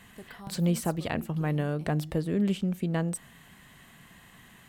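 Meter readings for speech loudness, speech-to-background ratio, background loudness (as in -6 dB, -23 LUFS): -30.0 LUFS, 18.0 dB, -48.0 LUFS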